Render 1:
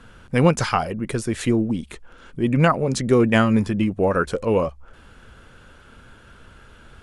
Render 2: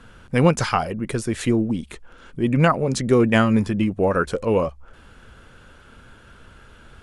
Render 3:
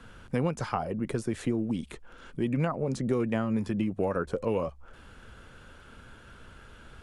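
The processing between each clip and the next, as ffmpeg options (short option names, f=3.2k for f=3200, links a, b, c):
-af anull
-filter_complex "[0:a]acrossover=split=110|1200[a][b][c];[a]acompressor=threshold=-42dB:ratio=4[d];[b]acompressor=threshold=-23dB:ratio=4[e];[c]acompressor=threshold=-42dB:ratio=4[f];[d][e][f]amix=inputs=3:normalize=0,volume=-3dB"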